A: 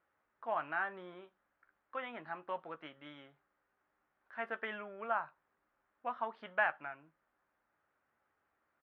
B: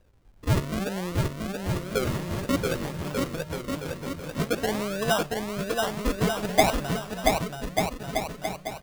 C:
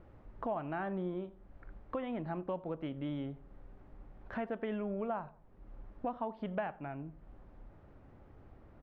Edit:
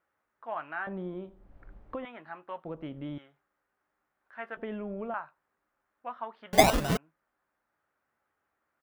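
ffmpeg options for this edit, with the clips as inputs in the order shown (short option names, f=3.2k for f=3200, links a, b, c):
-filter_complex "[2:a]asplit=3[a][b][c];[0:a]asplit=5[d][e][f][g][h];[d]atrim=end=0.872[i];[a]atrim=start=0.868:end=2.052[j];[e]atrim=start=2.048:end=2.652[k];[b]atrim=start=2.648:end=3.182[l];[f]atrim=start=3.178:end=4.572[m];[c]atrim=start=4.568:end=5.142[n];[g]atrim=start=5.138:end=6.532[o];[1:a]atrim=start=6.528:end=6.972[p];[h]atrim=start=6.968[q];[i][j]acrossfade=d=0.004:c1=hsin:c2=hsin[r];[r][k]acrossfade=d=0.004:c1=hsin:c2=hsin[s];[s][l]acrossfade=d=0.004:c1=hsin:c2=hsin[t];[t][m]acrossfade=d=0.004:c1=hsin:c2=hsin[u];[u][n]acrossfade=d=0.004:c1=hsin:c2=hsin[v];[v][o]acrossfade=d=0.004:c1=hsin:c2=hsin[w];[w][p]acrossfade=d=0.004:c1=hsin:c2=hsin[x];[x][q]acrossfade=d=0.004:c1=hsin:c2=hsin"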